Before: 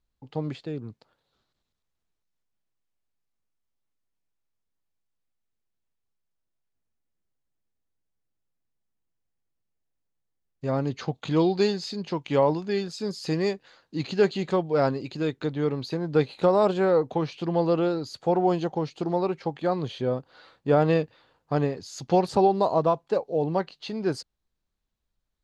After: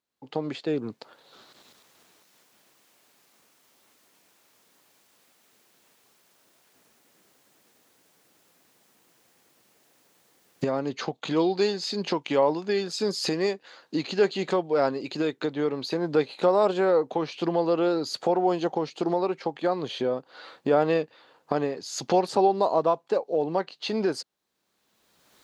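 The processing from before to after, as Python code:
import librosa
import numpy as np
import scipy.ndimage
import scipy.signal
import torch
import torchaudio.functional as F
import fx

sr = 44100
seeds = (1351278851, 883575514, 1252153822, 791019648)

y = fx.recorder_agc(x, sr, target_db=-15.5, rise_db_per_s=23.0, max_gain_db=30)
y = scipy.signal.sosfilt(scipy.signal.butter(2, 270.0, 'highpass', fs=sr, output='sos'), y)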